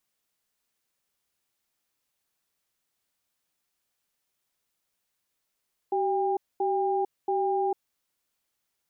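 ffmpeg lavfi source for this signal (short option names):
-f lavfi -i "aevalsrc='0.0501*(sin(2*PI*383*t)+sin(2*PI*801*t))*clip(min(mod(t,0.68),0.45-mod(t,0.68))/0.005,0,1)':d=1.98:s=44100"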